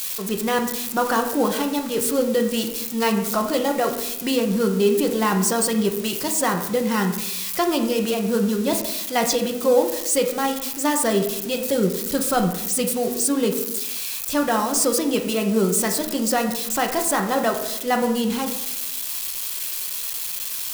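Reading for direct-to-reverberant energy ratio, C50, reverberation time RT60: 3.0 dB, 8.0 dB, 0.80 s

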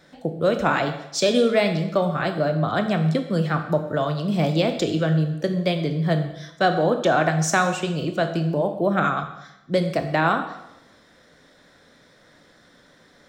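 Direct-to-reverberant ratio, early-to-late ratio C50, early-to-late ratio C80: 6.0 dB, 9.0 dB, 11.0 dB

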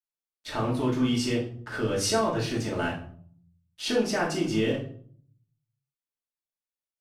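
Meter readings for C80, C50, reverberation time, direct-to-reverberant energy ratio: 12.0 dB, 7.0 dB, 0.55 s, -4.5 dB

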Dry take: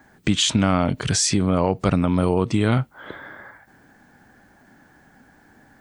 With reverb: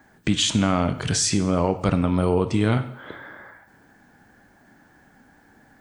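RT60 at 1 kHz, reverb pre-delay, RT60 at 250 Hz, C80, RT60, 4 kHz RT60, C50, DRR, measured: 0.75 s, 5 ms, 0.75 s, 15.5 dB, 0.75 s, 0.70 s, 13.0 dB, 9.5 dB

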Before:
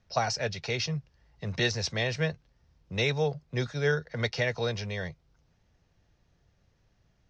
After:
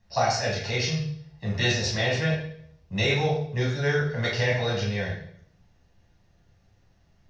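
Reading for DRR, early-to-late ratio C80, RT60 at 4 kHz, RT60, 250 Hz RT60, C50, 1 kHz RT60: -5.0 dB, 7.0 dB, 0.60 s, 0.65 s, 0.80 s, 3.5 dB, 0.55 s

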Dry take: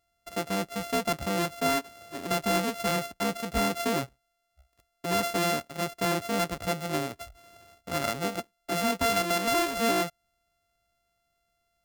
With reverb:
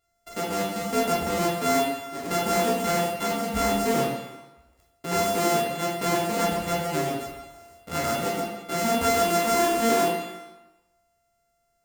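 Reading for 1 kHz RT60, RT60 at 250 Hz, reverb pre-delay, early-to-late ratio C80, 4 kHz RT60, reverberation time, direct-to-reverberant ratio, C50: 1.1 s, 0.95 s, 10 ms, 4.5 dB, 0.95 s, 1.1 s, -4.0 dB, 2.0 dB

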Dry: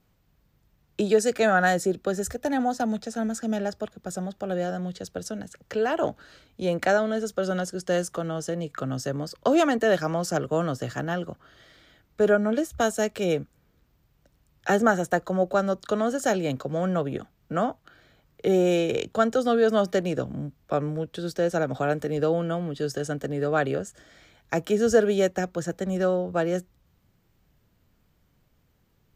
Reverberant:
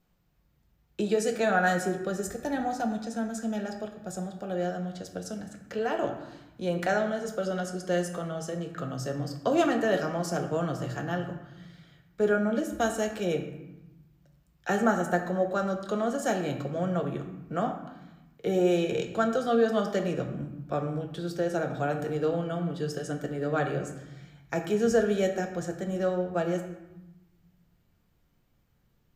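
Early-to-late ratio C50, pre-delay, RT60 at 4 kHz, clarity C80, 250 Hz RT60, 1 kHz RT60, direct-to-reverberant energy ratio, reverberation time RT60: 8.0 dB, 4 ms, 0.65 s, 9.5 dB, 1.5 s, 1.0 s, 3.0 dB, 1.0 s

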